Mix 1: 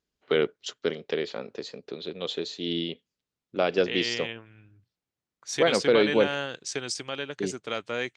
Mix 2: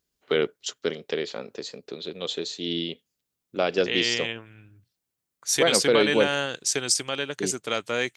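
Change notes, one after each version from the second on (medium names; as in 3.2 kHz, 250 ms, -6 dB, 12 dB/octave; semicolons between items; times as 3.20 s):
second voice +3.5 dB; master: remove distance through air 100 m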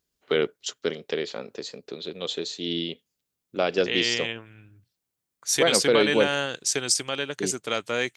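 no change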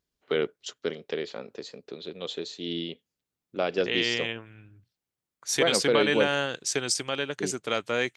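first voice -3.0 dB; master: add treble shelf 5.2 kHz -7.5 dB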